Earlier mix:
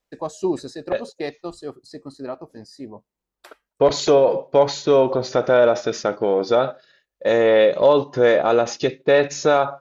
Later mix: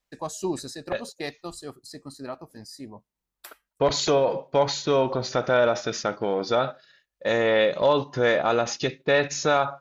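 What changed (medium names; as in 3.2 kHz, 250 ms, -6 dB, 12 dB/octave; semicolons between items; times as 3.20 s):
first voice: remove distance through air 61 m; master: add peaking EQ 440 Hz -7.5 dB 1.7 oct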